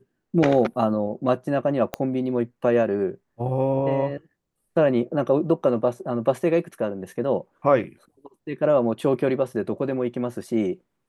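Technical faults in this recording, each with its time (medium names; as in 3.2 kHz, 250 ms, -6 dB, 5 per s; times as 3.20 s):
1.94 s: pop -11 dBFS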